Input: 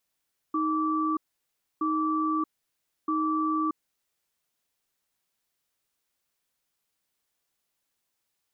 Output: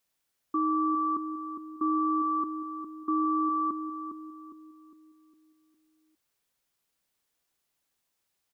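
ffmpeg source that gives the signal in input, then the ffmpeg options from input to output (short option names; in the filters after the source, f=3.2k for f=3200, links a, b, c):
-f lavfi -i "aevalsrc='0.0473*(sin(2*PI*313*t)+sin(2*PI*1160*t))*clip(min(mod(t,1.27),0.63-mod(t,1.27))/0.005,0,1)':d=3.53:s=44100"
-filter_complex "[0:a]asplit=2[a][b];[b]adelay=407,lowpass=f=820:p=1,volume=-6dB,asplit=2[c][d];[d]adelay=407,lowpass=f=820:p=1,volume=0.49,asplit=2[e][f];[f]adelay=407,lowpass=f=820:p=1,volume=0.49,asplit=2[g][h];[h]adelay=407,lowpass=f=820:p=1,volume=0.49,asplit=2[i][j];[j]adelay=407,lowpass=f=820:p=1,volume=0.49,asplit=2[k][l];[l]adelay=407,lowpass=f=820:p=1,volume=0.49[m];[a][c][e][g][i][k][m]amix=inputs=7:normalize=0"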